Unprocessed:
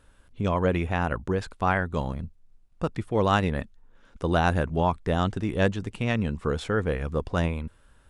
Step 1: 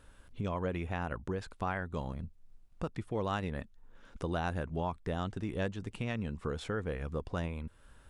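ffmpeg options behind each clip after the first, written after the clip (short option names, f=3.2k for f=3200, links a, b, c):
-af "acompressor=threshold=-40dB:ratio=2"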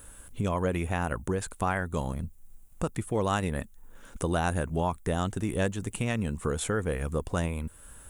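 -af "aexciter=amount=8.4:drive=2.7:freq=6.9k,volume=6.5dB"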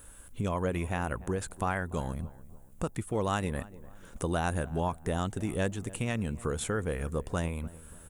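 -filter_complex "[0:a]asplit=2[a][b];[b]adelay=292,lowpass=f=1.2k:p=1,volume=-18dB,asplit=2[c][d];[d]adelay=292,lowpass=f=1.2k:p=1,volume=0.43,asplit=2[e][f];[f]adelay=292,lowpass=f=1.2k:p=1,volume=0.43,asplit=2[g][h];[h]adelay=292,lowpass=f=1.2k:p=1,volume=0.43[i];[a][c][e][g][i]amix=inputs=5:normalize=0,volume=-2.5dB"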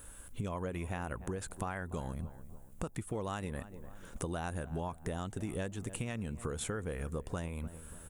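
-af "acompressor=threshold=-34dB:ratio=6"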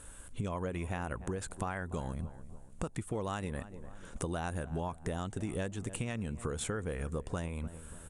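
-af "aresample=22050,aresample=44100,volume=1.5dB"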